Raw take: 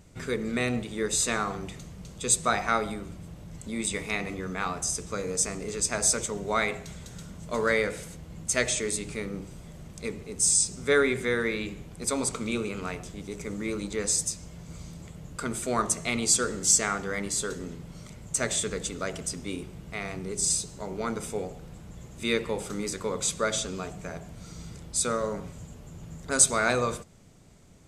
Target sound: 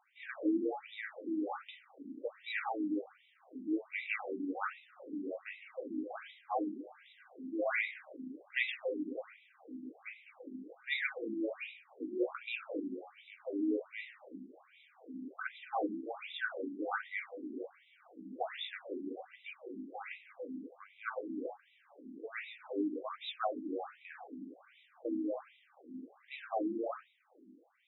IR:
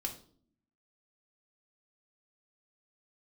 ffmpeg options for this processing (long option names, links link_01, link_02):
-filter_complex "[0:a]afreqshift=95[link_01];[1:a]atrim=start_sample=2205[link_02];[link_01][link_02]afir=irnorm=-1:irlink=0,afftfilt=real='re*between(b*sr/1024,260*pow(2800/260,0.5+0.5*sin(2*PI*1.3*pts/sr))/1.41,260*pow(2800/260,0.5+0.5*sin(2*PI*1.3*pts/sr))*1.41)':imag='im*between(b*sr/1024,260*pow(2800/260,0.5+0.5*sin(2*PI*1.3*pts/sr))/1.41,260*pow(2800/260,0.5+0.5*sin(2*PI*1.3*pts/sr))*1.41)':win_size=1024:overlap=0.75,volume=-2.5dB"